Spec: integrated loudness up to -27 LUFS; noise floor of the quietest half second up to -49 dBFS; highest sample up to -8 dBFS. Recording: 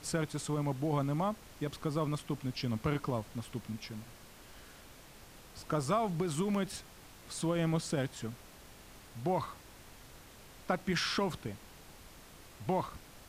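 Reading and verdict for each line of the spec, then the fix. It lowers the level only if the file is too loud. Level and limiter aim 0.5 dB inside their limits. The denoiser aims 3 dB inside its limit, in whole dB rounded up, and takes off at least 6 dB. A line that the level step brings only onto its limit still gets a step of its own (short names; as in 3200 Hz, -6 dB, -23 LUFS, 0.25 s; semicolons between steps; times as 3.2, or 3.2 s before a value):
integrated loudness -35.5 LUFS: OK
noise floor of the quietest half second -54 dBFS: OK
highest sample -17.0 dBFS: OK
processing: none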